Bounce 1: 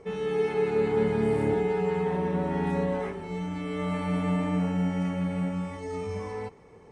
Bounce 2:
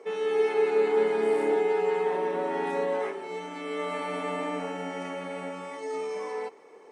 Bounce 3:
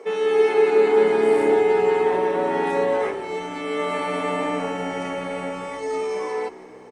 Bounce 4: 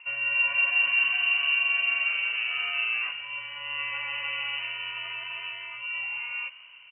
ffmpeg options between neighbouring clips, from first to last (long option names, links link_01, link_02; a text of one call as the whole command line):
ffmpeg -i in.wav -af "highpass=frequency=320:width=0.5412,highpass=frequency=320:width=1.3066,volume=2.5dB" out.wav
ffmpeg -i in.wav -filter_complex "[0:a]asplit=6[link_01][link_02][link_03][link_04][link_05][link_06];[link_02]adelay=171,afreqshift=-63,volume=-19.5dB[link_07];[link_03]adelay=342,afreqshift=-126,volume=-24.2dB[link_08];[link_04]adelay=513,afreqshift=-189,volume=-29dB[link_09];[link_05]adelay=684,afreqshift=-252,volume=-33.7dB[link_10];[link_06]adelay=855,afreqshift=-315,volume=-38.4dB[link_11];[link_01][link_07][link_08][link_09][link_10][link_11]amix=inputs=6:normalize=0,volume=7dB" out.wav
ffmpeg -i in.wav -af "lowpass=frequency=2700:width_type=q:width=0.5098,lowpass=frequency=2700:width_type=q:width=0.6013,lowpass=frequency=2700:width_type=q:width=0.9,lowpass=frequency=2700:width_type=q:width=2.563,afreqshift=-3200,volume=-7.5dB" out.wav